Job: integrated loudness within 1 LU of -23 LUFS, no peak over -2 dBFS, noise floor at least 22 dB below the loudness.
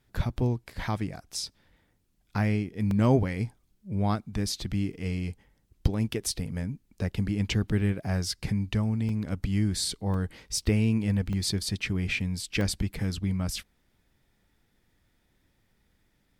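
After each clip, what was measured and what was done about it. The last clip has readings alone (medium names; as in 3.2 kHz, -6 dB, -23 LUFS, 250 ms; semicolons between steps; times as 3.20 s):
dropouts 7; longest dropout 1.8 ms; loudness -29.5 LUFS; peak level -10.0 dBFS; loudness target -23.0 LUFS
-> interpolate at 0.17/2.91/6.13/9.09/10.14/11.33/12.61 s, 1.8 ms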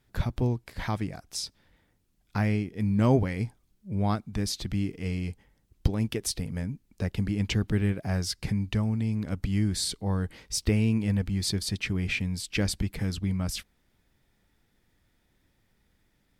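dropouts 0; loudness -29.5 LUFS; peak level -10.0 dBFS; loudness target -23.0 LUFS
-> trim +6.5 dB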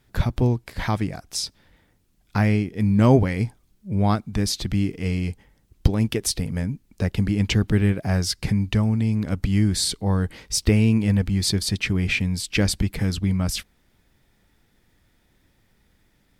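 loudness -23.0 LUFS; peak level -3.5 dBFS; noise floor -64 dBFS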